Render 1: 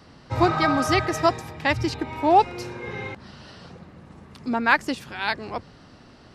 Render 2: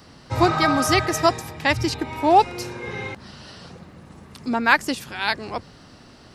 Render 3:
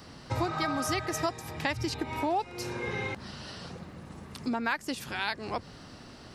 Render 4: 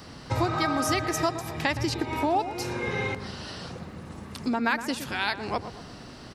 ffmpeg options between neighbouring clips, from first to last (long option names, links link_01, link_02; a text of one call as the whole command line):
ffmpeg -i in.wav -af "highshelf=frequency=6000:gain=10.5,volume=1.5dB" out.wav
ffmpeg -i in.wav -af "acompressor=threshold=-28dB:ratio=4,volume=-1dB" out.wav
ffmpeg -i in.wav -filter_complex "[0:a]asplit=2[link_01][link_02];[link_02]adelay=117,lowpass=frequency=1100:poles=1,volume=-9.5dB,asplit=2[link_03][link_04];[link_04]adelay=117,lowpass=frequency=1100:poles=1,volume=0.54,asplit=2[link_05][link_06];[link_06]adelay=117,lowpass=frequency=1100:poles=1,volume=0.54,asplit=2[link_07][link_08];[link_08]adelay=117,lowpass=frequency=1100:poles=1,volume=0.54,asplit=2[link_09][link_10];[link_10]adelay=117,lowpass=frequency=1100:poles=1,volume=0.54,asplit=2[link_11][link_12];[link_12]adelay=117,lowpass=frequency=1100:poles=1,volume=0.54[link_13];[link_01][link_03][link_05][link_07][link_09][link_11][link_13]amix=inputs=7:normalize=0,volume=4dB" out.wav